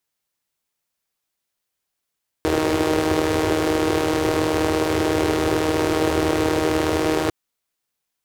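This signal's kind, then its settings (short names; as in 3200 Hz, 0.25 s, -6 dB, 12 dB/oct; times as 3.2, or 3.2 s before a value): four-cylinder engine model, steady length 4.85 s, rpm 4700, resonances 93/360 Hz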